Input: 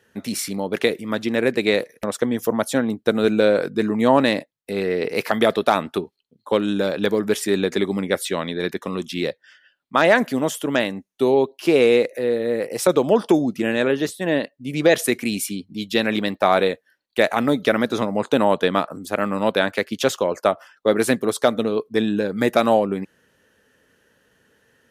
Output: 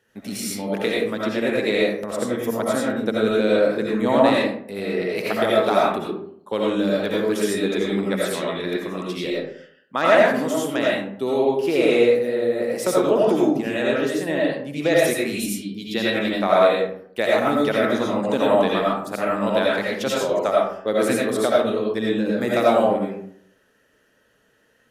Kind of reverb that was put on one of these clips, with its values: algorithmic reverb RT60 0.64 s, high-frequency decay 0.5×, pre-delay 45 ms, DRR -5 dB; trim -6.5 dB

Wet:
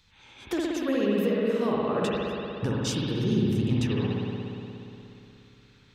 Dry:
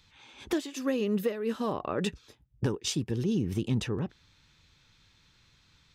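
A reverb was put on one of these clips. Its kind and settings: spring tank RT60 3 s, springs 59 ms, chirp 45 ms, DRR -4.5 dB; trim -1 dB

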